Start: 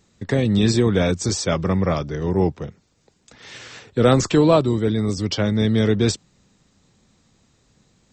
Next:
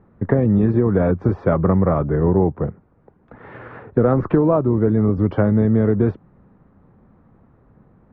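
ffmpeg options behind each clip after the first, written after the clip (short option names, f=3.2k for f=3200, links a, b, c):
-af "acompressor=threshold=-20dB:ratio=12,lowpass=f=1.4k:w=0.5412,lowpass=f=1.4k:w=1.3066,volume=8.5dB"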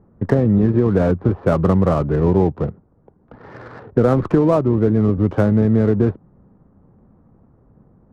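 -af "adynamicsmooth=sensitivity=6:basefreq=1.1k,volume=1dB"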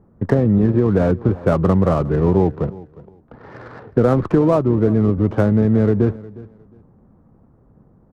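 -af "aecho=1:1:359|718:0.1|0.022"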